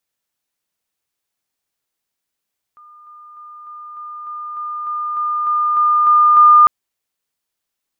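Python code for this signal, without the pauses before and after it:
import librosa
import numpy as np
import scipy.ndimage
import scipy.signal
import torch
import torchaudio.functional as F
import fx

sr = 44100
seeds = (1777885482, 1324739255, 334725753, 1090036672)

y = fx.level_ladder(sr, hz=1210.0, from_db=-40.5, step_db=3.0, steps=13, dwell_s=0.3, gap_s=0.0)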